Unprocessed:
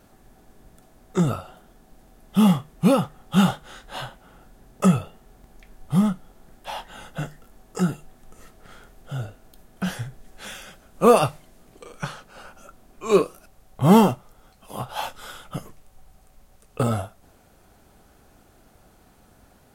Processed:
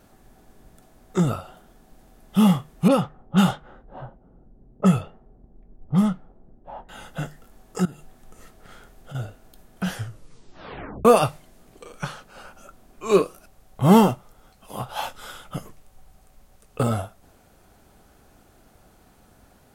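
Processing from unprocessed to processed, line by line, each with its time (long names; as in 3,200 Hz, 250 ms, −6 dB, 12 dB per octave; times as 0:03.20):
0:02.88–0:06.89: low-pass that shuts in the quiet parts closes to 380 Hz, open at −13.5 dBFS
0:07.85–0:09.15: downward compressor 4 to 1, threshold −37 dBFS
0:09.94: tape stop 1.11 s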